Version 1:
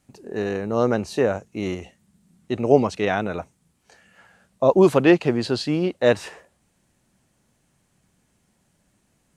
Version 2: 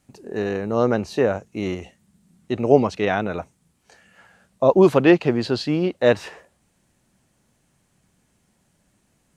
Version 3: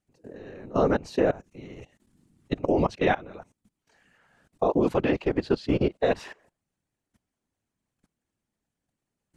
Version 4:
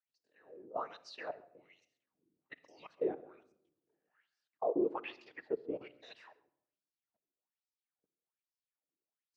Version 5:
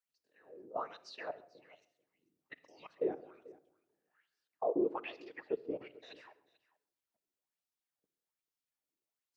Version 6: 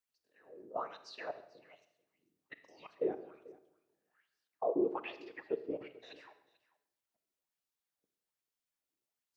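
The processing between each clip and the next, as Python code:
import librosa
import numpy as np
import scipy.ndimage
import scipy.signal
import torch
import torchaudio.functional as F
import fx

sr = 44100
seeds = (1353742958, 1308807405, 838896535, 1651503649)

y1 = fx.dynamic_eq(x, sr, hz=9000.0, q=1.1, threshold_db=-52.0, ratio=4.0, max_db=-7)
y1 = y1 * librosa.db_to_amplitude(1.0)
y2 = fx.level_steps(y1, sr, step_db=21)
y2 = fx.high_shelf(y2, sr, hz=6600.0, db=-5.0)
y2 = fx.whisperise(y2, sr, seeds[0])
y3 = fx.filter_lfo_bandpass(y2, sr, shape='sine', hz=1.2, low_hz=350.0, high_hz=5300.0, q=5.3)
y3 = y3 + 10.0 ** (-22.5 / 20.0) * np.pad(y3, (int(135 * sr / 1000.0), 0))[:len(y3)]
y3 = fx.room_shoebox(y3, sr, seeds[1], volume_m3=2800.0, walls='furnished', distance_m=0.53)
y3 = y3 * librosa.db_to_amplitude(-4.0)
y4 = y3 + 10.0 ** (-21.0 / 20.0) * np.pad(y3, (int(440 * sr / 1000.0), 0))[:len(y3)]
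y5 = fx.rev_schroeder(y4, sr, rt60_s=0.8, comb_ms=28, drr_db=13.0)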